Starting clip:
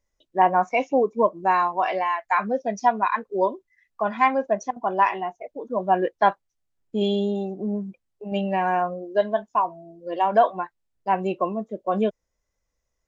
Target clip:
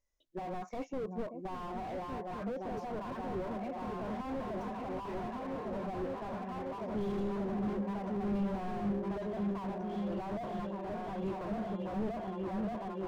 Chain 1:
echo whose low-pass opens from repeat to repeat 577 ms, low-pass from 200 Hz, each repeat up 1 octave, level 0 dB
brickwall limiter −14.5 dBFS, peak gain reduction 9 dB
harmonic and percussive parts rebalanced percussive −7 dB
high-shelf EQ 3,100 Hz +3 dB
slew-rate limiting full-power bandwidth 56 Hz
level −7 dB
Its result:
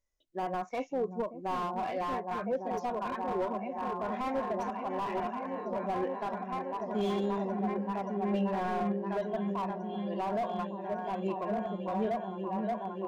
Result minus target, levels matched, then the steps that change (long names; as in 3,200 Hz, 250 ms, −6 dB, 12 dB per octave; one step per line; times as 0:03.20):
slew-rate limiting: distortion −12 dB
change: slew-rate limiting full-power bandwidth 17.5 Hz